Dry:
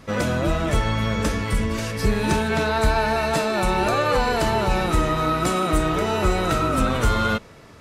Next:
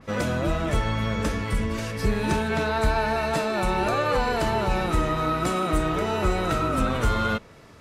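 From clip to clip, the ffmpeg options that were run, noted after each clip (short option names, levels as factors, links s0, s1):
-af "adynamicequalizer=threshold=0.0141:dfrequency=3500:dqfactor=0.7:tfrequency=3500:tqfactor=0.7:attack=5:release=100:ratio=0.375:range=1.5:mode=cutabove:tftype=highshelf,volume=0.708"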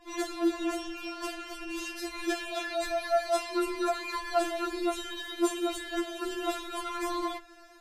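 -af "afftfilt=real='re*4*eq(mod(b,16),0)':imag='im*4*eq(mod(b,16),0)':win_size=2048:overlap=0.75"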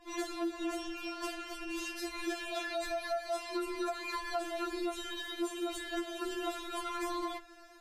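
-af "acompressor=threshold=0.0316:ratio=6,volume=0.794"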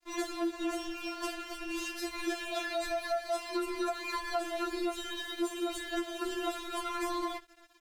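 -af "aeval=exprs='sgn(val(0))*max(abs(val(0))-0.00168,0)':c=same,volume=1.41"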